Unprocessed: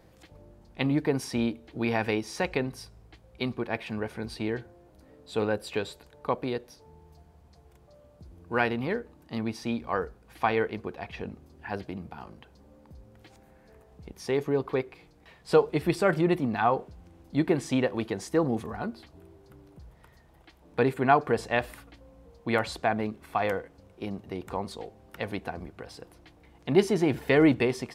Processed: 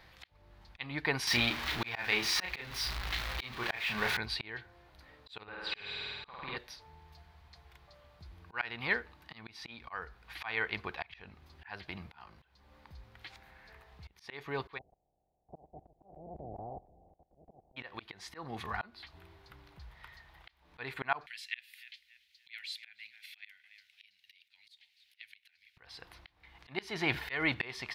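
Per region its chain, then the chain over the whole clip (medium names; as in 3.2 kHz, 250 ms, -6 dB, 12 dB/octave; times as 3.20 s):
1.27–4.17 s: jump at every zero crossing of -34 dBFS + doubling 33 ms -5 dB
5.43–6.57 s: low-pass 3.4 kHz + compression 5:1, threshold -34 dBFS + flutter echo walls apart 8.6 m, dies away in 1.5 s
14.77–17.76 s: spectral peaks clipped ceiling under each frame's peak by 24 dB + Chebyshev low-pass 760 Hz, order 6 + level held to a coarse grid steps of 19 dB
21.26–25.77 s: inverse Chebyshev high-pass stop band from 1.2 kHz + dynamic bell 4.3 kHz, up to -7 dB, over -54 dBFS, Q 0.75 + filtered feedback delay 287 ms, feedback 39%, low-pass 3.4 kHz, level -19.5 dB
whole clip: ten-band graphic EQ 125 Hz -4 dB, 250 Hz -10 dB, 500 Hz -8 dB, 1 kHz +4 dB, 2 kHz +8 dB, 4 kHz +10 dB, 8 kHz -8 dB; slow attack 357 ms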